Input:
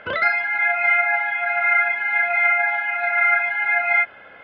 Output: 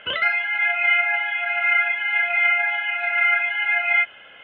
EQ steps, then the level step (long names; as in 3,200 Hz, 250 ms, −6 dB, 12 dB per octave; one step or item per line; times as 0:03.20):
low-pass with resonance 3,000 Hz, resonance Q 11
−6.0 dB